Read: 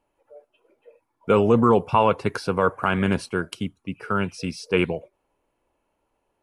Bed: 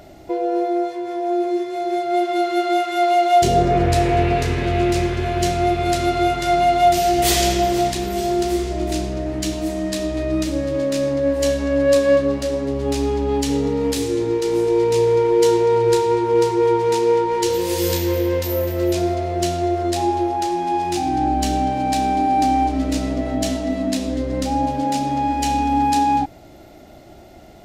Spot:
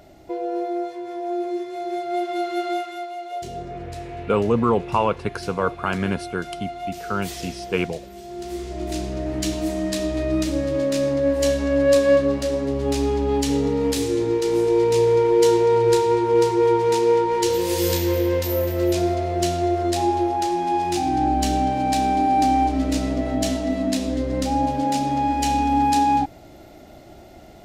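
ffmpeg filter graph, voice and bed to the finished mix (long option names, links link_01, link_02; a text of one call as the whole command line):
ffmpeg -i stem1.wav -i stem2.wav -filter_complex "[0:a]adelay=3000,volume=-2dB[link_01];[1:a]volume=10.5dB,afade=type=out:start_time=2.69:duration=0.39:silence=0.266073,afade=type=in:start_time=8.28:duration=1.12:silence=0.158489[link_02];[link_01][link_02]amix=inputs=2:normalize=0" out.wav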